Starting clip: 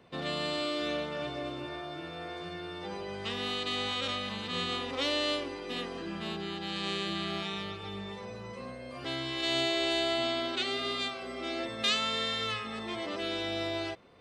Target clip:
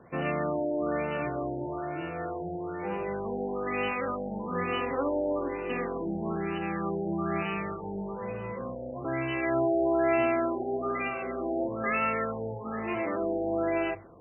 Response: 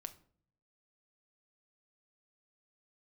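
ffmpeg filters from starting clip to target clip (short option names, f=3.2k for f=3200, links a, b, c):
-filter_complex "[0:a]asplit=2[a][b];[1:a]atrim=start_sample=2205[c];[b][c]afir=irnorm=-1:irlink=0,volume=4.5dB[d];[a][d]amix=inputs=2:normalize=0,afftfilt=real='re*lt(b*sr/1024,890*pow(3000/890,0.5+0.5*sin(2*PI*1.1*pts/sr)))':imag='im*lt(b*sr/1024,890*pow(3000/890,0.5+0.5*sin(2*PI*1.1*pts/sr)))':win_size=1024:overlap=0.75"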